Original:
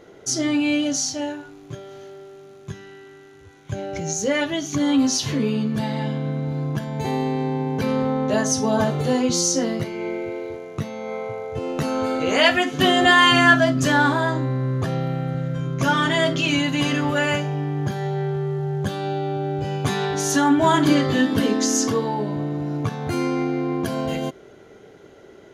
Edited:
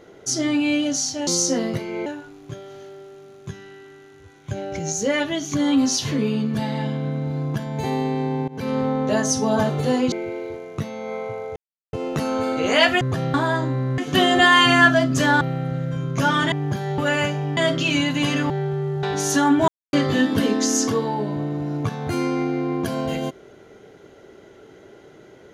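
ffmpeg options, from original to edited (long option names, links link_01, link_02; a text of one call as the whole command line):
ffmpeg -i in.wav -filter_complex "[0:a]asplit=17[link_01][link_02][link_03][link_04][link_05][link_06][link_07][link_08][link_09][link_10][link_11][link_12][link_13][link_14][link_15][link_16][link_17];[link_01]atrim=end=1.272[link_18];[link_02]atrim=start=9.328:end=10.122[link_19];[link_03]atrim=start=1.268:end=7.69,asetpts=PTS-STARTPTS,afade=type=out:start_time=6.418:duration=0.004:curve=hsin:silence=0.0891251[link_20];[link_04]atrim=start=7.69:end=9.332,asetpts=PTS-STARTPTS,afade=type=in:duration=0.41:curve=qsin:silence=0.0891251[link_21];[link_05]atrim=start=10.118:end=11.56,asetpts=PTS-STARTPTS,afade=type=out:start_time=1.438:duration=0.004:curve=hsin,apad=pad_dur=0.37[link_22];[link_06]atrim=start=11.56:end=12.642,asetpts=PTS-STARTPTS,afade=type=in:duration=0.004:curve=hsin[link_23];[link_07]atrim=start=14.708:end=15.042[link_24];[link_08]atrim=start=14.068:end=14.712[link_25];[link_09]atrim=start=12.638:end=14.072[link_26];[link_10]atrim=start=15.038:end=16.152[link_27];[link_11]atrim=start=17.668:end=18.132[link_28];[link_12]atrim=start=17.078:end=17.672[link_29];[link_13]atrim=start=16.148:end=17.082[link_30];[link_14]atrim=start=18.128:end=18.662[link_31];[link_15]atrim=start=20.028:end=20.68,asetpts=PTS-STARTPTS,afade=type=out:start_time=0.648:duration=0.004:curve=hsin[link_32];[link_16]atrim=start=20.68:end=20.93,asetpts=PTS-STARTPTS,volume=0[link_33];[link_17]atrim=start=20.93,asetpts=PTS-STARTPTS,afade=type=in:duration=0.004:curve=hsin[link_34];[link_18][link_19]acrossfade=duration=0.004:curve1=hsin:curve2=hsin[link_35];[link_20][link_21]concat=n=2:v=0:a=1[link_36];[link_35][link_36]acrossfade=duration=0.004:curve1=hsin:curve2=hsin[link_37];[link_22][link_23]concat=n=2:v=0:a=1[link_38];[link_37][link_38]acrossfade=duration=0.004:curve1=hsin:curve2=hsin[link_39];[link_39][link_24]acrossfade=duration=0.004:curve1=hsin:curve2=hsin[link_40];[link_40][link_25]acrossfade=duration=0.004:curve1=hsin:curve2=hsin[link_41];[link_41][link_26]acrossfade=duration=0.004:curve1=hsin:curve2=hsin[link_42];[link_42][link_27]acrossfade=duration=0.004:curve1=hsin:curve2=hsin[link_43];[link_43][link_28]acrossfade=duration=0.004:curve1=hsin:curve2=hsin[link_44];[link_44][link_29]acrossfade=duration=0.004:curve1=hsin:curve2=hsin[link_45];[link_45][link_30]acrossfade=duration=0.004:curve1=hsin:curve2=hsin[link_46];[link_46][link_31]acrossfade=duration=0.004:curve1=hsin:curve2=hsin[link_47];[link_32][link_33][link_34]concat=n=3:v=0:a=1[link_48];[link_47][link_48]acrossfade=duration=0.004:curve1=hsin:curve2=hsin" out.wav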